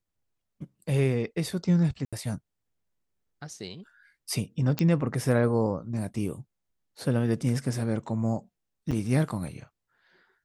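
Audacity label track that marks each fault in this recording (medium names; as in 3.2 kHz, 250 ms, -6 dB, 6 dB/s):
2.050000	2.130000	dropout 76 ms
4.790000	4.790000	pop -11 dBFS
8.910000	8.920000	dropout 6.5 ms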